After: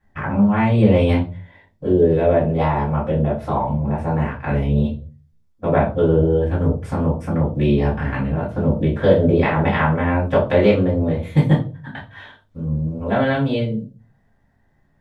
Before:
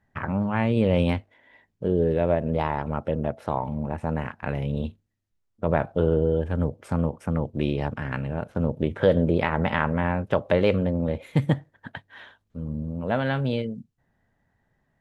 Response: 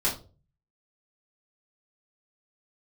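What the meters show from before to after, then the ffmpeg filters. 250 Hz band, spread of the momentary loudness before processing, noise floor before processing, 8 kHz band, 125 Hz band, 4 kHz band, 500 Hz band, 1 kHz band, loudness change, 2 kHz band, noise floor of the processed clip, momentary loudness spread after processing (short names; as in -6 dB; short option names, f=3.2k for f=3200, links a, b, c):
+7.5 dB, 10 LU, -74 dBFS, n/a, +7.5 dB, +4.0 dB, +6.5 dB, +6.5 dB, +7.0 dB, +5.0 dB, -60 dBFS, 10 LU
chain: -filter_complex "[1:a]atrim=start_sample=2205[a];[0:a][a]afir=irnorm=-1:irlink=0,volume=-4dB"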